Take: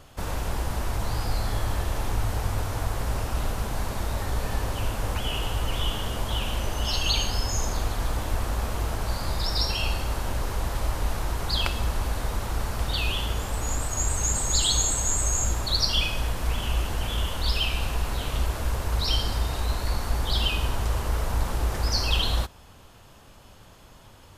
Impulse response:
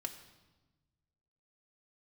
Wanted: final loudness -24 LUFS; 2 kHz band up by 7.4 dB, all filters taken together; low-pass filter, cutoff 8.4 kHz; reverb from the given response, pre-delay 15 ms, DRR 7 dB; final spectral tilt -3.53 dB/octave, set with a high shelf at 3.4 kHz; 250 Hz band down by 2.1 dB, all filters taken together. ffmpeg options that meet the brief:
-filter_complex "[0:a]lowpass=8400,equalizer=f=250:t=o:g=-3,equalizer=f=2000:t=o:g=7,highshelf=f=3400:g=8.5,asplit=2[s0][s1];[1:a]atrim=start_sample=2205,adelay=15[s2];[s1][s2]afir=irnorm=-1:irlink=0,volume=0.501[s3];[s0][s3]amix=inputs=2:normalize=0,volume=0.841"

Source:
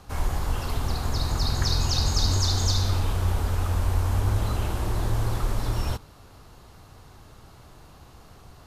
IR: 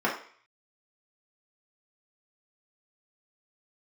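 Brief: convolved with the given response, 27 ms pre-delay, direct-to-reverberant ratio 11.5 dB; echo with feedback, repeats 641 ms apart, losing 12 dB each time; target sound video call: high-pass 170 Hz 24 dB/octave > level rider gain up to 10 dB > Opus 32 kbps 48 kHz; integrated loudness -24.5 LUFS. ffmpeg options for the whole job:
-filter_complex "[0:a]aecho=1:1:641|1282|1923:0.251|0.0628|0.0157,asplit=2[s0][s1];[1:a]atrim=start_sample=2205,adelay=27[s2];[s1][s2]afir=irnorm=-1:irlink=0,volume=0.0596[s3];[s0][s3]amix=inputs=2:normalize=0,highpass=f=170:w=0.5412,highpass=f=170:w=1.3066,dynaudnorm=m=3.16,volume=2" -ar 48000 -c:a libopus -b:a 32k

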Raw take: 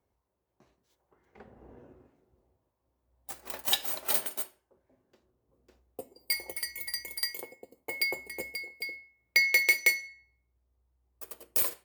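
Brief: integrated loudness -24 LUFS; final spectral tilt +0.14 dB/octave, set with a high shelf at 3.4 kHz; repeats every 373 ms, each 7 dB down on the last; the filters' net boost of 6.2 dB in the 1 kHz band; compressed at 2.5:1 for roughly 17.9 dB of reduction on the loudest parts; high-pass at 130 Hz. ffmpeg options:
-af "highpass=130,equalizer=f=1000:t=o:g=7.5,highshelf=f=3400:g=4.5,acompressor=threshold=0.00562:ratio=2.5,aecho=1:1:373|746|1119|1492|1865:0.447|0.201|0.0905|0.0407|0.0183,volume=7.5"

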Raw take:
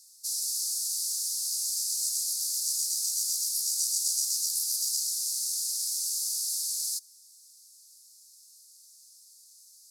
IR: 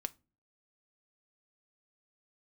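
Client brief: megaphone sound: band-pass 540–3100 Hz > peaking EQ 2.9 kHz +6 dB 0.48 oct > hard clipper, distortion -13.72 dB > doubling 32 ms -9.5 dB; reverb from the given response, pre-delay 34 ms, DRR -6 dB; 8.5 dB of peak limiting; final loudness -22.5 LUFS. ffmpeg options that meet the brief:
-filter_complex "[0:a]alimiter=limit=0.0708:level=0:latency=1,asplit=2[s0][s1];[1:a]atrim=start_sample=2205,adelay=34[s2];[s1][s2]afir=irnorm=-1:irlink=0,volume=2.37[s3];[s0][s3]amix=inputs=2:normalize=0,highpass=540,lowpass=3100,equalizer=f=2900:t=o:w=0.48:g=6,asoftclip=type=hard:threshold=0.0141,asplit=2[s4][s5];[s5]adelay=32,volume=0.335[s6];[s4][s6]amix=inputs=2:normalize=0,volume=5.96"

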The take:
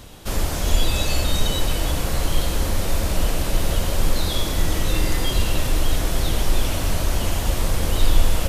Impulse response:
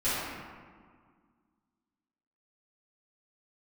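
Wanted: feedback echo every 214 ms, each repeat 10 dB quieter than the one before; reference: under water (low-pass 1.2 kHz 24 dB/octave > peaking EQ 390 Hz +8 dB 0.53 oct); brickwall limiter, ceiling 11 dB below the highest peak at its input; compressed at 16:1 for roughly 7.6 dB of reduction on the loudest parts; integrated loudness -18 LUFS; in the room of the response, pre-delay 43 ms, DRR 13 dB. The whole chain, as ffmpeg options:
-filter_complex "[0:a]acompressor=threshold=0.158:ratio=16,alimiter=limit=0.0891:level=0:latency=1,aecho=1:1:214|428|642|856:0.316|0.101|0.0324|0.0104,asplit=2[s0][s1];[1:a]atrim=start_sample=2205,adelay=43[s2];[s1][s2]afir=irnorm=-1:irlink=0,volume=0.0596[s3];[s0][s3]amix=inputs=2:normalize=0,lowpass=f=1200:w=0.5412,lowpass=f=1200:w=1.3066,equalizer=f=390:t=o:w=0.53:g=8,volume=5.62"

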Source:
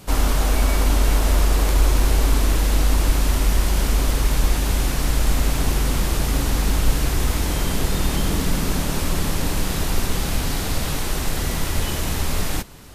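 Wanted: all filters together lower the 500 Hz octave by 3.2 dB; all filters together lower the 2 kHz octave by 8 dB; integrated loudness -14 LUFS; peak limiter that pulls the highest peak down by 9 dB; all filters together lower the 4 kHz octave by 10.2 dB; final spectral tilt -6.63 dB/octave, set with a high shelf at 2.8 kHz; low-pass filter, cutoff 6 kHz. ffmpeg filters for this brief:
-af "lowpass=6000,equalizer=f=500:t=o:g=-3.5,equalizer=f=2000:t=o:g=-6.5,highshelf=f=2800:g=-6,equalizer=f=4000:t=o:g=-5,volume=4.47,alimiter=limit=0.75:level=0:latency=1"

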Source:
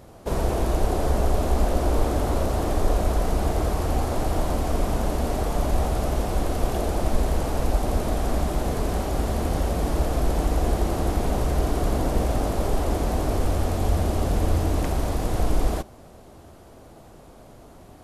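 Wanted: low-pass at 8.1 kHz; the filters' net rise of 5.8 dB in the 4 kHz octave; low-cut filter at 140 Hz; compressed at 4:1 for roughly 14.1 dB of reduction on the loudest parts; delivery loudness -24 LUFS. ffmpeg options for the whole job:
-af "highpass=140,lowpass=8100,equalizer=f=4000:t=o:g=7.5,acompressor=threshold=0.00891:ratio=4,volume=7.94"

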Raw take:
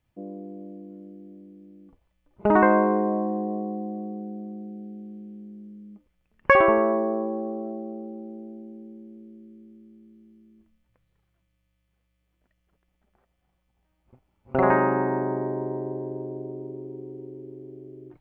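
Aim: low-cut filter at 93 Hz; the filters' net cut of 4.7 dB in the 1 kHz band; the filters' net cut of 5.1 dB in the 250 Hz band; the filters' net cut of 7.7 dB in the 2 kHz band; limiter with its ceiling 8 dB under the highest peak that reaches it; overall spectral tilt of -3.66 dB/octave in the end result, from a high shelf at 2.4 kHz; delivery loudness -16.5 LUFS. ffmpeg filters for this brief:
-af "highpass=93,equalizer=f=250:t=o:g=-6.5,equalizer=f=1000:t=o:g=-3,equalizer=f=2000:t=o:g=-5.5,highshelf=f=2400:g=-7.5,volume=5.96,alimiter=limit=0.841:level=0:latency=1"

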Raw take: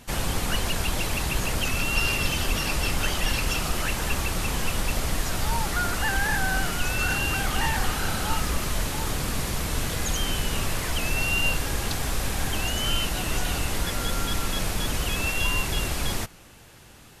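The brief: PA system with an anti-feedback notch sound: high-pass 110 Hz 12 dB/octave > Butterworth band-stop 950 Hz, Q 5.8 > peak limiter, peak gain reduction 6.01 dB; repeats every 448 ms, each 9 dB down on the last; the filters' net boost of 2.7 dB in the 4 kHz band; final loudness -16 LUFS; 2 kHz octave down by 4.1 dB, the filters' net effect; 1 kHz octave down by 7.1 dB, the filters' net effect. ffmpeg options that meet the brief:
-af "highpass=110,asuperstop=centerf=950:order=8:qfactor=5.8,equalizer=f=1000:t=o:g=-6,equalizer=f=2000:t=o:g=-8.5,equalizer=f=4000:t=o:g=7.5,aecho=1:1:448|896|1344|1792:0.355|0.124|0.0435|0.0152,volume=3.98,alimiter=limit=0.422:level=0:latency=1"

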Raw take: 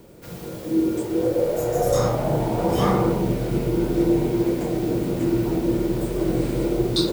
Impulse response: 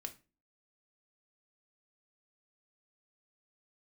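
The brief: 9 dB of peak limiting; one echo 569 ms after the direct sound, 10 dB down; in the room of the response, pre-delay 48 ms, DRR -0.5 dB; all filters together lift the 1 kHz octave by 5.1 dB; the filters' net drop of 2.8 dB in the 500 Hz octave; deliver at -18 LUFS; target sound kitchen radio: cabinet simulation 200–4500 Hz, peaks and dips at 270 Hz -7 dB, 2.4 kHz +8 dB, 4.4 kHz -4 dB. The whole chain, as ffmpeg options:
-filter_complex "[0:a]equalizer=f=500:t=o:g=-4.5,equalizer=f=1000:t=o:g=8.5,alimiter=limit=0.178:level=0:latency=1,aecho=1:1:569:0.316,asplit=2[s0][s1];[1:a]atrim=start_sample=2205,adelay=48[s2];[s1][s2]afir=irnorm=-1:irlink=0,volume=1.5[s3];[s0][s3]amix=inputs=2:normalize=0,highpass=200,equalizer=f=270:t=q:w=4:g=-7,equalizer=f=2400:t=q:w=4:g=8,equalizer=f=4400:t=q:w=4:g=-4,lowpass=f=4500:w=0.5412,lowpass=f=4500:w=1.3066,volume=2"

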